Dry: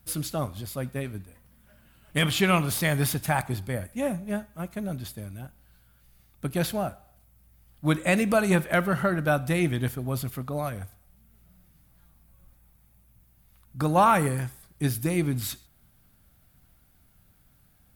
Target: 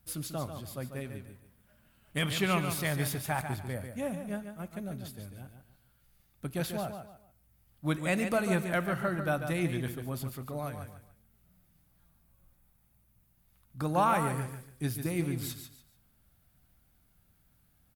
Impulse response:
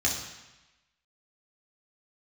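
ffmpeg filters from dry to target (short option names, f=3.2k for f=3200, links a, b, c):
-af "aecho=1:1:144|288|432:0.398|0.115|0.0335,volume=-7dB"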